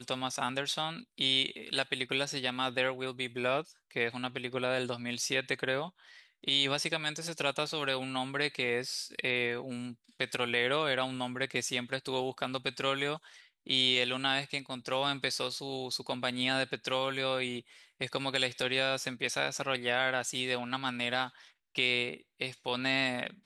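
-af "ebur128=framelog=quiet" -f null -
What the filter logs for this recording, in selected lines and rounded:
Integrated loudness:
  I:         -31.9 LUFS
  Threshold: -42.1 LUFS
Loudness range:
  LRA:         2.0 LU
  Threshold: -52.2 LUFS
  LRA low:   -33.2 LUFS
  LRA high:  -31.2 LUFS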